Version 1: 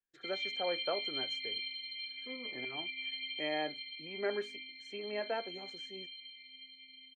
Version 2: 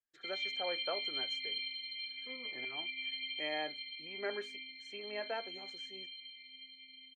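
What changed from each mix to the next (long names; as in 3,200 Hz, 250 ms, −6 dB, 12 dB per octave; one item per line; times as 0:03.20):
speech: add low-shelf EQ 500 Hz −8.5 dB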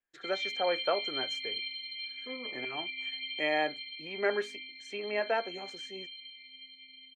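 speech +9.5 dB
background: send +9.5 dB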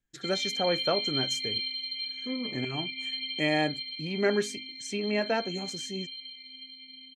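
background: send −10.5 dB
master: remove three-way crossover with the lows and the highs turned down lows −22 dB, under 390 Hz, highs −17 dB, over 2,900 Hz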